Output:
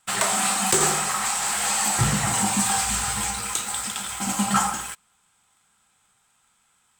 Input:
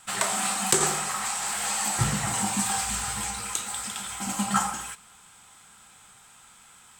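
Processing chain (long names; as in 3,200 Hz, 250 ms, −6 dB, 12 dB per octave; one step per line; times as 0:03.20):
leveller curve on the samples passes 3
level −6.5 dB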